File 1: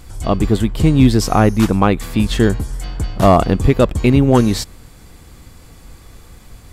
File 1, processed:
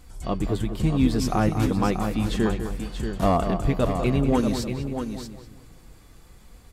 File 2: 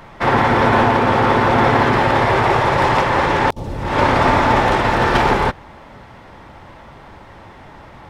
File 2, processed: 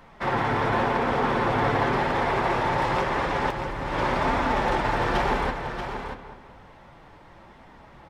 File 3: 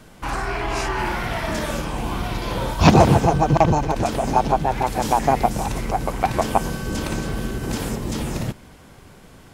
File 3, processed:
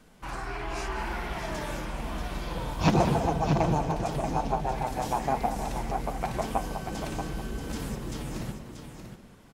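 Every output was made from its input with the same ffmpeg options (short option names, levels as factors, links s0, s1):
-filter_complex "[0:a]asplit=2[s0][s1];[s1]adelay=199,lowpass=f=2800:p=1,volume=0.355,asplit=2[s2][s3];[s3]adelay=199,lowpass=f=2800:p=1,volume=0.41,asplit=2[s4][s5];[s5]adelay=199,lowpass=f=2800:p=1,volume=0.41,asplit=2[s6][s7];[s7]adelay=199,lowpass=f=2800:p=1,volume=0.41,asplit=2[s8][s9];[s9]adelay=199,lowpass=f=2800:p=1,volume=0.41[s10];[s2][s4][s6][s8][s10]amix=inputs=5:normalize=0[s11];[s0][s11]amix=inputs=2:normalize=0,flanger=delay=3.8:depth=3.2:regen=-45:speed=0.91:shape=triangular,asplit=2[s12][s13];[s13]aecho=0:1:634:0.398[s14];[s12][s14]amix=inputs=2:normalize=0,volume=0.473"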